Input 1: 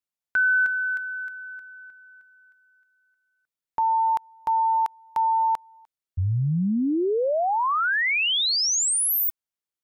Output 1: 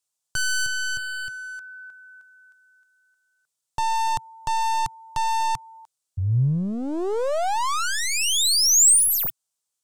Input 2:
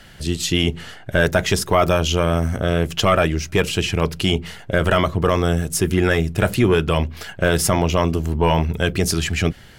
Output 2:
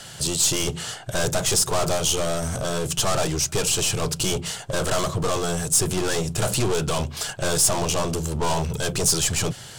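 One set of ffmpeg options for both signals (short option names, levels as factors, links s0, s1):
-filter_complex "[0:a]asplit=2[s0][s1];[s1]highpass=f=720:p=1,volume=11.2,asoftclip=type=tanh:threshold=0.531[s2];[s0][s2]amix=inputs=2:normalize=0,lowpass=f=6400:p=1,volume=0.501,aeval=exprs='clip(val(0),-1,0.0841)':c=same,equalizer=f=125:t=o:w=1:g=11,equalizer=f=250:t=o:w=1:g=-5,equalizer=f=2000:t=o:w=1:g=-10,equalizer=f=8000:t=o:w=1:g=11,volume=0.501"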